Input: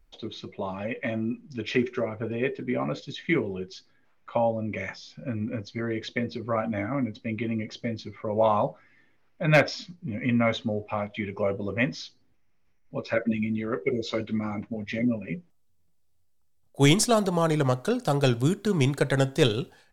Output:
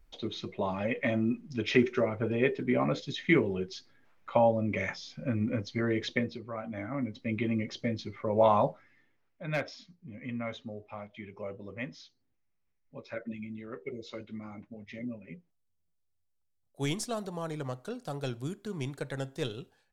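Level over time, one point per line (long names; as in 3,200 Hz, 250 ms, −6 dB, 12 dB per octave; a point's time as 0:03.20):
0:06.14 +0.5 dB
0:06.52 −12 dB
0:07.35 −1 dB
0:08.69 −1 dB
0:09.42 −13 dB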